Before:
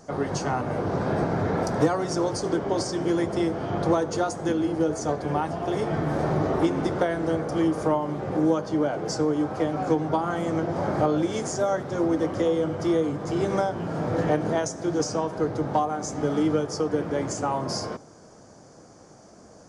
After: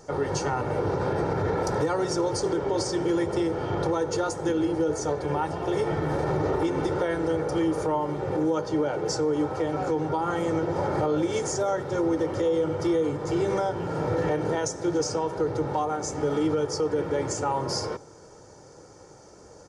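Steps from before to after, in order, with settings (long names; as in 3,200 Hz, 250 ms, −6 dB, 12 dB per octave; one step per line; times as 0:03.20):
comb filter 2.2 ms, depth 56%
brickwall limiter −17 dBFS, peak gain reduction 8.5 dB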